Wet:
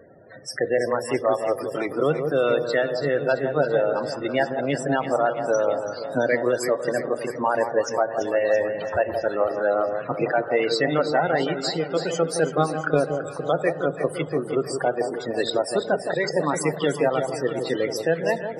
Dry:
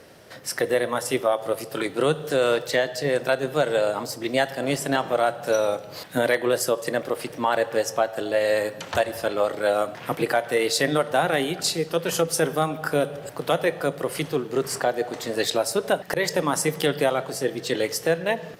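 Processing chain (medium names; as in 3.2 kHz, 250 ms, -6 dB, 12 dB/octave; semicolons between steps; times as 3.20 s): loudest bins only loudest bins 32; echo whose repeats swap between lows and highs 167 ms, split 1.1 kHz, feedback 75%, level -7 dB; 12.41–13.15 s: transient shaper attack +4 dB, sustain -2 dB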